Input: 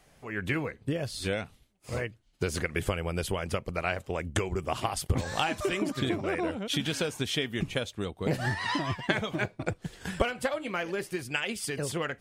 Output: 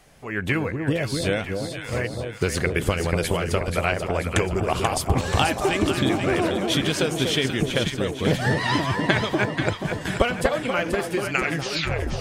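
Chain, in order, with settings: tape stop at the end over 0.92 s; echo with dull and thin repeats by turns 0.242 s, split 1000 Hz, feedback 73%, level -4 dB; gain +6.5 dB

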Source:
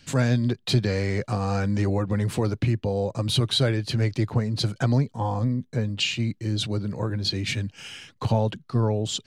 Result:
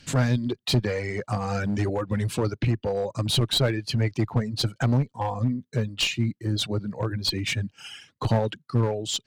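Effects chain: reverb removal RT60 2 s; one-sided clip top -24 dBFS; gain +2 dB

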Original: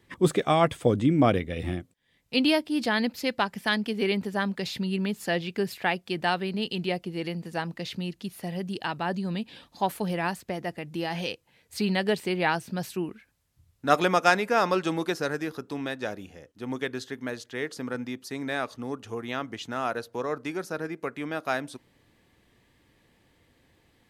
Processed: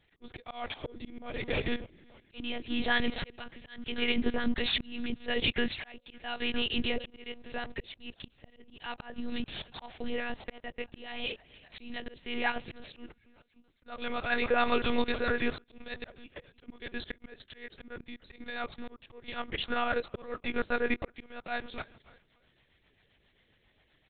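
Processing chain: steep high-pass 180 Hz 36 dB/oct; high shelf 2100 Hz +11 dB; de-hum 269.8 Hz, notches 4; on a send: frequency-shifting echo 0.291 s, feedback 47%, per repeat -46 Hz, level -21 dB; on the sum: level quantiser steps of 11 dB; sample leveller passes 2; in parallel at -2 dB: compressor 5:1, threshold -33 dBFS, peak gain reduction 17 dB; on the sum: limiter -14.5 dBFS, peak gain reduction 8 dB; rotary speaker horn 1.2 Hz, later 7.5 Hz, at 10.42; monotone LPC vocoder at 8 kHz 240 Hz; auto swell 0.59 s

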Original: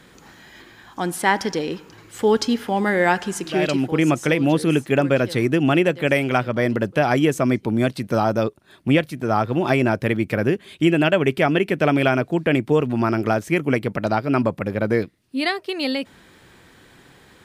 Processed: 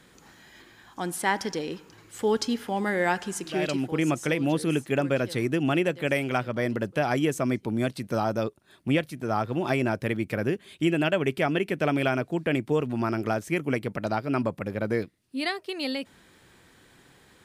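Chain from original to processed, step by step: bell 9300 Hz +4 dB 1.5 oct; gain -7 dB

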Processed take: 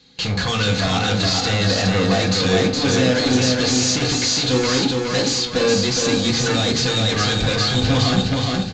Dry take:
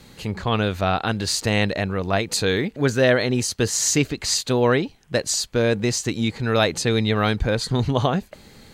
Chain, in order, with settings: HPF 46 Hz; gate with hold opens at -35 dBFS; bell 4000 Hz +13.5 dB 1.3 oct; in parallel at 0 dB: negative-ratio compressor -21 dBFS; on the sum: small resonant body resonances 290/1600 Hz, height 6 dB; hard clip -21.5 dBFS, distortion -3 dB; feedback echo 0.415 s, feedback 38%, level -3 dB; on a send at -1 dB: reverb RT60 0.50 s, pre-delay 3 ms; on the sum: downsampling 16000 Hz

